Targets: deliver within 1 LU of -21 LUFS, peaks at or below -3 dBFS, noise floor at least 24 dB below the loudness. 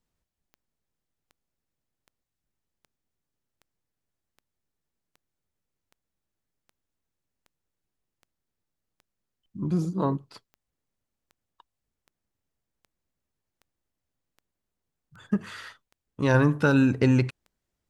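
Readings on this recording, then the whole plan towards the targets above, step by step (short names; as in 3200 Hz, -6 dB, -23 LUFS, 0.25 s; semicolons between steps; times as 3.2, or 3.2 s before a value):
clicks 23; loudness -24.5 LUFS; peak -9.0 dBFS; loudness target -21.0 LUFS
-> de-click; gain +3.5 dB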